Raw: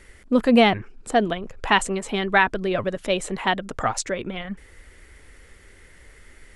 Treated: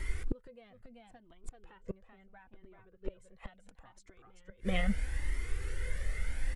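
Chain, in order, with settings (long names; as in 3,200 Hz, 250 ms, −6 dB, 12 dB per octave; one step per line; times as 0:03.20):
0:01.71–0:03.20: head-to-tape spacing loss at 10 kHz 34 dB
single-tap delay 385 ms −6.5 dB
downward compressor 5 to 1, threshold −21 dBFS, peak gain reduction 9.5 dB
hollow resonant body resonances 500/1,500/2,100 Hz, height 7 dB, ringing for 90 ms
gate with flip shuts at −21 dBFS, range −37 dB
low-shelf EQ 98 Hz +10.5 dB
flanger whose copies keep moving one way rising 0.75 Hz
level +7.5 dB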